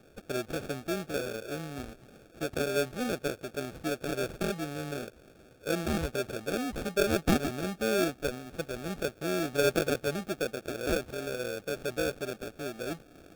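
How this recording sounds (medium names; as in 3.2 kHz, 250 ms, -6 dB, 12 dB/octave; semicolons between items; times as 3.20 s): aliases and images of a low sample rate 1 kHz, jitter 0%; AAC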